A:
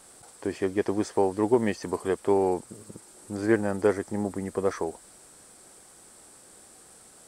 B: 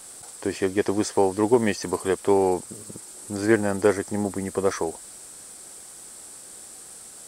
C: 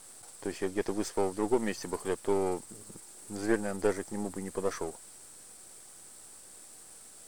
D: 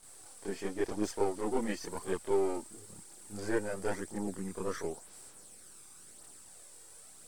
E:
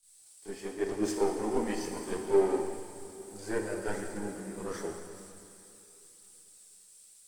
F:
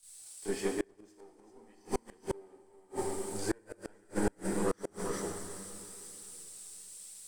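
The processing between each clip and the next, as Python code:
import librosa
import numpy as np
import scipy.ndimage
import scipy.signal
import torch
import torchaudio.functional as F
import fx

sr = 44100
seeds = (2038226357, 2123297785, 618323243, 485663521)

y1 = fx.high_shelf(x, sr, hz=2900.0, db=8.0)
y1 = y1 * 10.0 ** (3.0 / 20.0)
y2 = np.where(y1 < 0.0, 10.0 ** (-7.0 / 20.0) * y1, y1)
y2 = y2 * 10.0 ** (-6.0 / 20.0)
y3 = fx.chorus_voices(y2, sr, voices=2, hz=0.48, base_ms=28, depth_ms=2.3, mix_pct=65)
y4 = fx.rev_plate(y3, sr, seeds[0], rt60_s=4.7, hf_ratio=0.8, predelay_ms=0, drr_db=1.0)
y4 = fx.band_widen(y4, sr, depth_pct=70)
y4 = y4 * 10.0 ** (-1.5 / 20.0)
y5 = fx.echo_multitap(y4, sr, ms=(393, 394), db=(-16.5, -7.0))
y5 = fx.gate_flip(y5, sr, shuts_db=-25.0, range_db=-34)
y5 = y5 * 10.0 ** (6.5 / 20.0)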